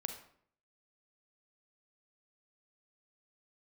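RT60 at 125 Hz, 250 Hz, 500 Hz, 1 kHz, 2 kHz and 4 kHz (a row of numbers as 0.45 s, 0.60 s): 0.70 s, 0.70 s, 0.65 s, 0.60 s, 0.50 s, 0.40 s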